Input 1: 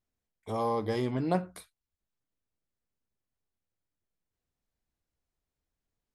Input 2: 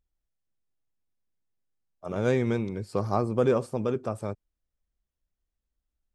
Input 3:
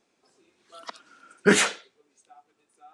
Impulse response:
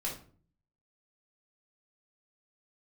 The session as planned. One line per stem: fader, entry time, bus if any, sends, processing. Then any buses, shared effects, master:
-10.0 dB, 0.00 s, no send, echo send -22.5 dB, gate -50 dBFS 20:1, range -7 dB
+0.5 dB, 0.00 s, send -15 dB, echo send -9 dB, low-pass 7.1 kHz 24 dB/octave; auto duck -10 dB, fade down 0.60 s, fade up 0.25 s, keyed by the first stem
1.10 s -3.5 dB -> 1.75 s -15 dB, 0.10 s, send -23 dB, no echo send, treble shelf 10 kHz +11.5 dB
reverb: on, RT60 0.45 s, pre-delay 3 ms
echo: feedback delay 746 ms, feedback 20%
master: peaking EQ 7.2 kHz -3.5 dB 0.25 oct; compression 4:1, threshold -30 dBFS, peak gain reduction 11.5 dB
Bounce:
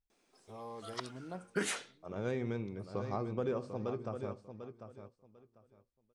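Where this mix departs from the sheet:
stem 1 -10.0 dB -> -16.5 dB; stem 2 +0.5 dB -> -11.0 dB

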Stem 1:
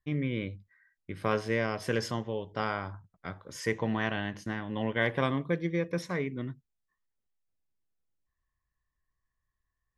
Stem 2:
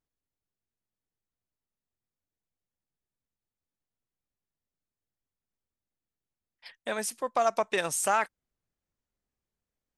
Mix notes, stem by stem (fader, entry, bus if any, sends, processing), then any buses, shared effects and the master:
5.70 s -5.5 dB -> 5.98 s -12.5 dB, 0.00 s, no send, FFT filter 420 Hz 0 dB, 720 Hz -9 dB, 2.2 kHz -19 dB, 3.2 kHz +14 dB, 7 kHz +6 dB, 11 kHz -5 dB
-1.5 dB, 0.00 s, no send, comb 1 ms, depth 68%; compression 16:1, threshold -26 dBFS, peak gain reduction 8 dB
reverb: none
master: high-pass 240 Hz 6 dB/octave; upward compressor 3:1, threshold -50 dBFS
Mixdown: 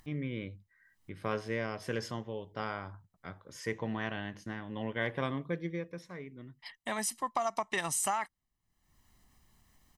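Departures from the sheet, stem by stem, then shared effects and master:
stem 1: missing FFT filter 420 Hz 0 dB, 720 Hz -9 dB, 2.2 kHz -19 dB, 3.2 kHz +14 dB, 7 kHz +6 dB, 11 kHz -5 dB; master: missing high-pass 240 Hz 6 dB/octave

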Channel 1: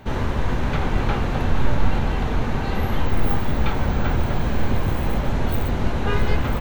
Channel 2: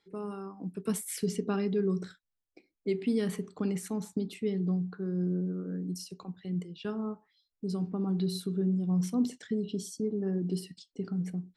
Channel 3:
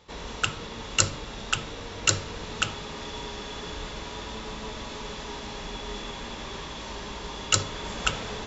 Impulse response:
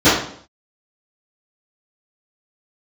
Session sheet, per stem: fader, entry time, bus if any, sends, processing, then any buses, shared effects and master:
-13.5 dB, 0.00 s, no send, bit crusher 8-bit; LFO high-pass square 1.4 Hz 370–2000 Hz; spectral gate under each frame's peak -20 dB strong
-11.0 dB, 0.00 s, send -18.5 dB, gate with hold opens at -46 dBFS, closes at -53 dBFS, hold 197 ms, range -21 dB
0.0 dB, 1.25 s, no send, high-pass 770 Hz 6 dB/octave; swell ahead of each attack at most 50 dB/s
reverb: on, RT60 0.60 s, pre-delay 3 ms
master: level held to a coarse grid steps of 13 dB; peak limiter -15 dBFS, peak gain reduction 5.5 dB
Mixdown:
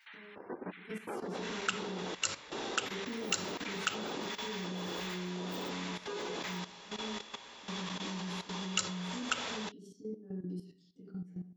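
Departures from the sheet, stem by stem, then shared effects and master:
stem 2 -11.0 dB -> -19.0 dB; stem 3: missing swell ahead of each attack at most 50 dB/s

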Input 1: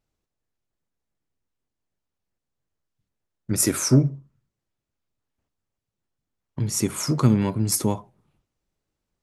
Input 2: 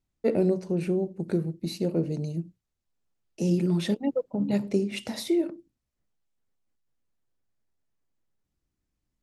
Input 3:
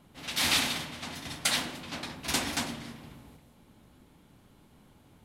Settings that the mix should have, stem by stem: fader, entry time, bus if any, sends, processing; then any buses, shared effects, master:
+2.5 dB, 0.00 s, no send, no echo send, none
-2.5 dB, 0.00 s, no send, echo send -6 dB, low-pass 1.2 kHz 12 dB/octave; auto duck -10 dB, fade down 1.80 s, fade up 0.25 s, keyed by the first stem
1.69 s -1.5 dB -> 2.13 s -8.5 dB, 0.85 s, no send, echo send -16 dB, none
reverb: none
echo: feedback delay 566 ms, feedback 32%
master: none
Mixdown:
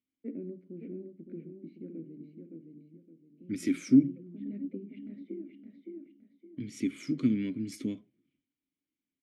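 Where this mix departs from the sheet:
stem 3: muted; master: extra vowel filter i

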